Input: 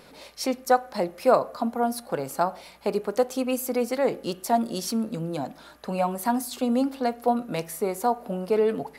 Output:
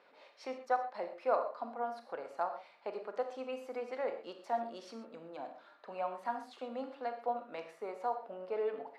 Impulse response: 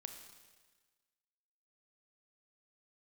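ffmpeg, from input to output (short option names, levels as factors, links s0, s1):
-filter_complex "[0:a]highpass=520,lowpass=2500[s0];[1:a]atrim=start_sample=2205,atrim=end_sample=6174[s1];[s0][s1]afir=irnorm=-1:irlink=0,volume=0.562"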